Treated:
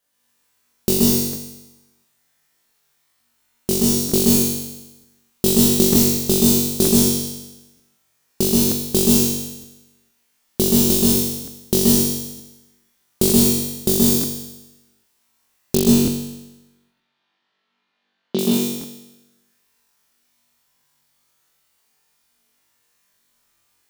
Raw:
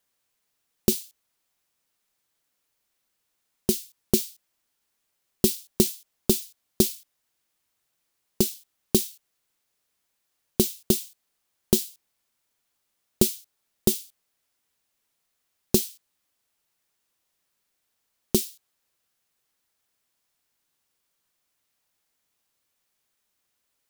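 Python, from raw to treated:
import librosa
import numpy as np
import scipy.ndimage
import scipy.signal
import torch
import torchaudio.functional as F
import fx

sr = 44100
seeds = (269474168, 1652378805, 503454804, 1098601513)

y = fx.cheby1_bandpass(x, sr, low_hz=170.0, high_hz=3800.0, order=3, at=(15.75, 18.39))
y = fx.room_flutter(y, sr, wall_m=3.6, rt60_s=1.0)
y = fx.rev_plate(y, sr, seeds[0], rt60_s=0.6, hf_ratio=0.9, predelay_ms=115, drr_db=-3.5)
y = fx.buffer_crackle(y, sr, first_s=0.39, period_s=0.92, block=1024, kind='repeat')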